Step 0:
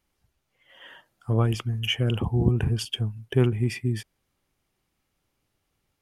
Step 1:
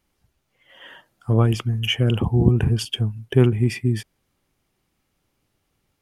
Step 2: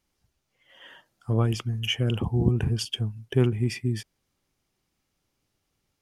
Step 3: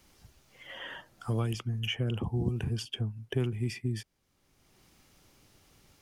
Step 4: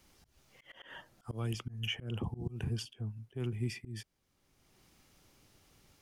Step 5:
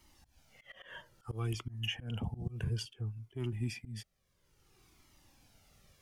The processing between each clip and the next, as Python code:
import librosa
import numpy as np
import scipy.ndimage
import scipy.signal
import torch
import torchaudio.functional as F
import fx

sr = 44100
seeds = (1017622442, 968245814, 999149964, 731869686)

y1 = fx.peak_eq(x, sr, hz=220.0, db=2.5, octaves=2.2)
y1 = y1 * 10.0 ** (3.5 / 20.0)
y2 = fx.peak_eq(y1, sr, hz=5600.0, db=5.5, octaves=1.1)
y2 = y2 * 10.0 ** (-6.0 / 20.0)
y3 = fx.band_squash(y2, sr, depth_pct=70)
y3 = y3 * 10.0 ** (-6.5 / 20.0)
y4 = fx.auto_swell(y3, sr, attack_ms=155.0)
y4 = y4 * 10.0 ** (-3.0 / 20.0)
y5 = fx.comb_cascade(y4, sr, direction='falling', hz=0.59)
y5 = y5 * 10.0 ** (4.0 / 20.0)